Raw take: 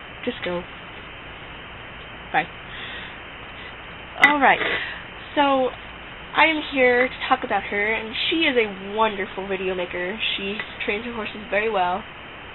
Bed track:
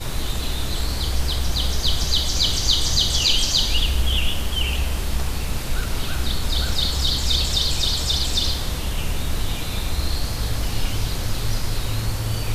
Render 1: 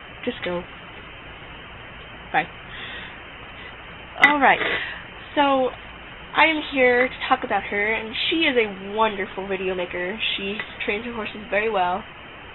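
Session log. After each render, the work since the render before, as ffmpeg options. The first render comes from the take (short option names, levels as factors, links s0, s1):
-af "afftdn=nr=6:nf=-39"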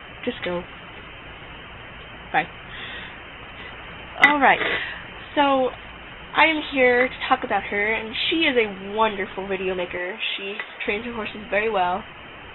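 -filter_complex "[0:a]asettb=1/sr,asplit=3[s0][s1][s2];[s0]atrim=end=3.604[s3];[s1]atrim=start=3.6:end=5.25,asetpts=PTS-STARTPTS,afade=t=in:d=0.004:c=qsin,afade=t=out:st=1.646:d=0.004:c=qsin,acompressor=mode=upward:threshold=0.0251:ratio=2.5:attack=3.2:release=140:knee=2.83:detection=peak[s4];[s2]atrim=start=5.246[s5];[s3][s4]acrossfade=d=0.004:c1=hsin:c2=qsin[s6];[s6][s5]acrossfade=d=0.004:c1=qsin:c2=hsin,asettb=1/sr,asplit=3[s7][s8][s9];[s7]atrim=end=9.974[s10];[s8]atrim=start=9.97:end=10.86,asetpts=PTS-STARTPTS,afade=t=in:d=0.004:c=qsin,afade=t=out:st=0.886:d=0.004:c=qsin,bass=f=250:g=-14,treble=f=4000:g=-9[s11];[s9]atrim=start=10.856[s12];[s10][s11]acrossfade=d=0.004:c1=hsin:c2=qsin[s13];[s13][s12]acrossfade=d=0.004:c1=qsin:c2=hsin"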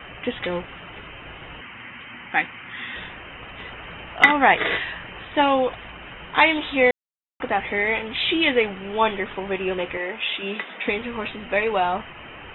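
-filter_complex "[0:a]asettb=1/sr,asplit=3[s0][s1][s2];[s0]atrim=end=1.614[s3];[s1]atrim=start=1.61:end=2.96,asetpts=PTS-STARTPTS,afade=t=in:d=0.004:c=qsin,afade=t=out:st=1.346:d=0.004:c=qsin,highpass=130,equalizer=f=160:t=q:w=4:g=-7,equalizer=f=240:t=q:w=4:g=5,equalizer=f=430:t=q:w=4:g=-10,equalizer=f=650:t=q:w=4:g=-9,equalizer=f=2100:t=q:w=4:g=5,lowpass=f=3500:w=0.5412,lowpass=f=3500:w=1.3066[s4];[s2]atrim=start=2.956[s5];[s3][s4]acrossfade=d=0.004:c1=hsin:c2=qsin[s6];[s6][s5]acrossfade=d=0.004:c1=qsin:c2=hsin,asettb=1/sr,asplit=3[s7][s8][s9];[s7]atrim=end=10.424[s10];[s8]atrim=start=10.42:end=10.89,asetpts=PTS-STARTPTS,afade=t=in:d=0.004:c=qsin,afade=t=out:st=0.466:d=0.004:c=qsin,lowshelf=f=130:t=q:w=3:g=-14[s11];[s9]atrim=start=10.886[s12];[s10][s11]acrossfade=d=0.004:c1=hsin:c2=qsin[s13];[s13][s12]acrossfade=d=0.004:c1=qsin:c2=hsin,asplit=3[s14][s15][s16];[s14]atrim=end=6.91,asetpts=PTS-STARTPTS,afade=t=out:st=6.906:d=0.004:c=hsin[s17];[s15]atrim=start=6.91:end=7.4,asetpts=PTS-STARTPTS,volume=0[s18];[s16]atrim=start=7.4,asetpts=PTS-STARTPTS,afade=t=in:d=0.004:c=hsin[s19];[s17][s18][s19]concat=n=3:v=0:a=1"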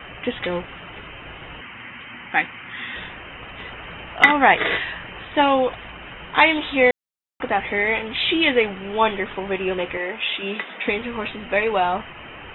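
-af "volume=1.19,alimiter=limit=0.891:level=0:latency=1"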